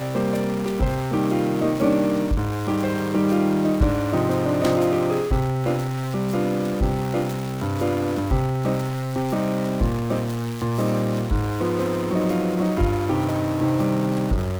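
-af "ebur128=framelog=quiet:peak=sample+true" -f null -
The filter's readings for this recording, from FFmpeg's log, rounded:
Integrated loudness:
  I:         -22.8 LUFS
  Threshold: -32.8 LUFS
Loudness range:
  LRA:         2.6 LU
  Threshold: -42.9 LUFS
  LRA low:   -24.1 LUFS
  LRA high:  -21.5 LUFS
Sample peak:
  Peak:       -6.6 dBFS
True peak:
  Peak:       -6.6 dBFS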